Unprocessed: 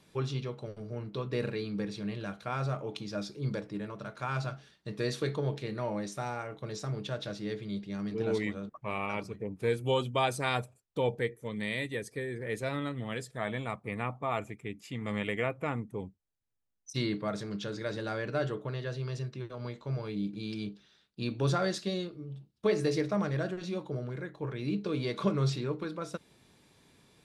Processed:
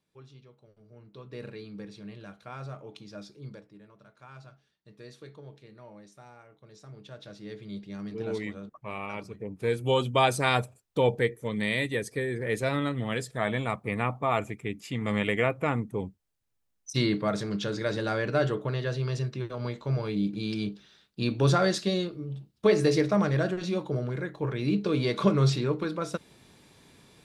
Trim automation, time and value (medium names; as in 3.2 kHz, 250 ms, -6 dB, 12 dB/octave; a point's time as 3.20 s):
0.65 s -18 dB
1.48 s -7 dB
3.35 s -7 dB
3.76 s -15 dB
6.65 s -15 dB
7.77 s -2 dB
9.21 s -2 dB
10.21 s +6 dB